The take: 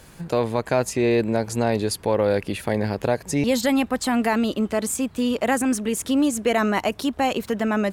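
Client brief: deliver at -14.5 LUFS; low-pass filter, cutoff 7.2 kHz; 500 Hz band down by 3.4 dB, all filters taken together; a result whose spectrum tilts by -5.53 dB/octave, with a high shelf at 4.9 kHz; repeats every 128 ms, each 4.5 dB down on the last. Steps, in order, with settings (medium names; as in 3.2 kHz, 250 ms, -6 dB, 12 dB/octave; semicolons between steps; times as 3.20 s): low-pass 7.2 kHz; peaking EQ 500 Hz -4 dB; treble shelf 4.9 kHz -4 dB; feedback delay 128 ms, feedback 60%, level -4.5 dB; trim +8 dB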